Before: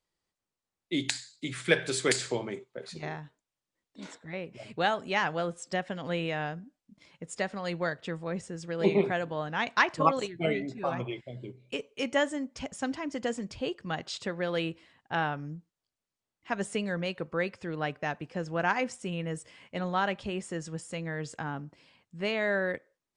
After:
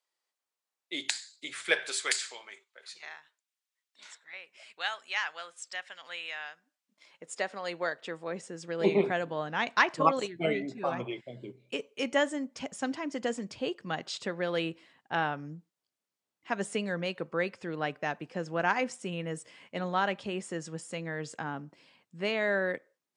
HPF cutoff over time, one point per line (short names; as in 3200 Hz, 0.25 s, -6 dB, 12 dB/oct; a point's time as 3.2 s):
1.68 s 590 Hz
2.35 s 1500 Hz
6.55 s 1500 Hz
7.28 s 390 Hz
7.96 s 390 Hz
9.01 s 170 Hz